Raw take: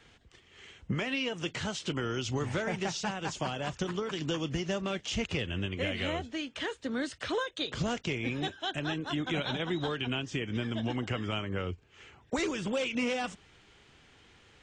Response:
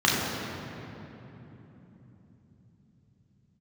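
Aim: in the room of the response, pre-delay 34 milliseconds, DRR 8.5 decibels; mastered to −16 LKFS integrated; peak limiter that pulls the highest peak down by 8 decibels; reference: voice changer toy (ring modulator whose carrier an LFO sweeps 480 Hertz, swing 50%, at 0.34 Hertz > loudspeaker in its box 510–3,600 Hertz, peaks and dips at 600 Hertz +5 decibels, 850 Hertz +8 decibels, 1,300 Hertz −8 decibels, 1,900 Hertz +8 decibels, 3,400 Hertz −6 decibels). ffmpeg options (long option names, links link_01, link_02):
-filter_complex "[0:a]alimiter=level_in=3dB:limit=-24dB:level=0:latency=1,volume=-3dB,asplit=2[link_01][link_02];[1:a]atrim=start_sample=2205,adelay=34[link_03];[link_02][link_03]afir=irnorm=-1:irlink=0,volume=-26.5dB[link_04];[link_01][link_04]amix=inputs=2:normalize=0,aeval=exprs='val(0)*sin(2*PI*480*n/s+480*0.5/0.34*sin(2*PI*0.34*n/s))':channel_layout=same,highpass=510,equalizer=frequency=600:width_type=q:width=4:gain=5,equalizer=frequency=850:width_type=q:width=4:gain=8,equalizer=frequency=1300:width_type=q:width=4:gain=-8,equalizer=frequency=1900:width_type=q:width=4:gain=8,equalizer=frequency=3400:width_type=q:width=4:gain=-6,lowpass=frequency=3600:width=0.5412,lowpass=frequency=3600:width=1.3066,volume=21.5dB"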